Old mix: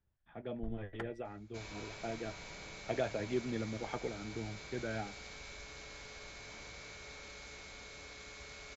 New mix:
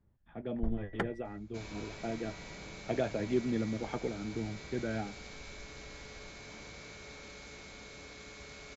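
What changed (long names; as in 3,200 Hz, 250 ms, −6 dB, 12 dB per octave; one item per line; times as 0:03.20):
first sound +8.5 dB
master: add parametric band 220 Hz +7 dB 1.9 octaves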